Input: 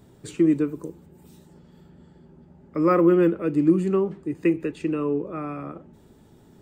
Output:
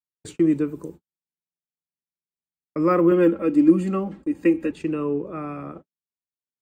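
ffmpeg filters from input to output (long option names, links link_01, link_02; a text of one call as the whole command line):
ffmpeg -i in.wav -filter_complex "[0:a]agate=range=-59dB:threshold=-39dB:ratio=16:detection=peak,asettb=1/sr,asplit=3[link_01][link_02][link_03];[link_01]atrim=end=3.114[link_04];[link_02]atrim=start=3.11:end=4.71,asetpts=PTS-STARTPTS,afade=type=in:duration=0.004:curve=qsin,afade=type=out:start_time=1.596:duration=0.004:curve=qsin,aecho=1:1:3.7:0.84,atrim=end_sample=70560[link_05];[link_03]atrim=start=4.706[link_06];[link_04][link_05]acrossfade=duration=0.004:curve1=hsin:curve2=qsin[link_07];[link_07][link_06]acrossfade=duration=0.004:curve1=qsin:curve2=hsin" out.wav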